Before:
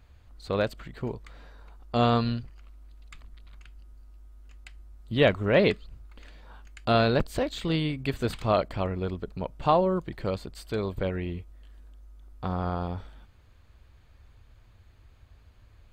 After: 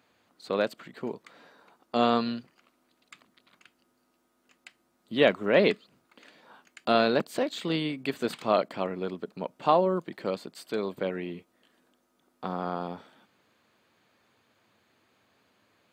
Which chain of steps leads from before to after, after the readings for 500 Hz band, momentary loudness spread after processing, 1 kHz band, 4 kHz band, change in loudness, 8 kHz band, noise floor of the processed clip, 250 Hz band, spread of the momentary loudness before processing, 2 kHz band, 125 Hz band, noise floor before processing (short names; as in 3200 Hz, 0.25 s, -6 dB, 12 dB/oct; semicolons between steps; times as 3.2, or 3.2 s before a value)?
0.0 dB, 15 LU, 0.0 dB, 0.0 dB, -1.0 dB, n/a, -72 dBFS, -1.0 dB, 13 LU, 0.0 dB, -10.5 dB, -56 dBFS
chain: HPF 190 Hz 24 dB/oct